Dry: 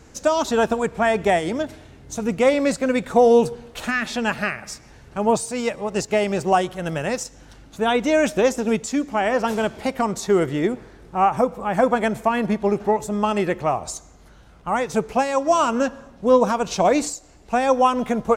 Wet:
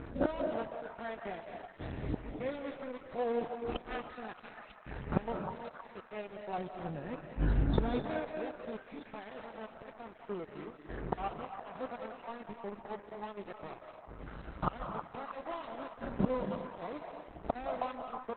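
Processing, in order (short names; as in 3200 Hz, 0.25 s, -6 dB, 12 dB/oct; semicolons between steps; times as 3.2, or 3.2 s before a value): stepped spectrum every 50 ms; 3.41–4.36 small resonant body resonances 340/750/1200 Hz, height 13 dB, ringing for 55 ms; 6.58–8 low shelf 400 Hz +11 dB; flipped gate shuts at -25 dBFS, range -28 dB; loudest bins only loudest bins 64; crossover distortion -53 dBFS; delay with a stepping band-pass 0.316 s, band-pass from 870 Hz, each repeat 0.7 oct, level -5 dB; reverb RT60 0.75 s, pre-delay 0.147 s, DRR 5.5 dB; gain +11.5 dB; Opus 8 kbps 48000 Hz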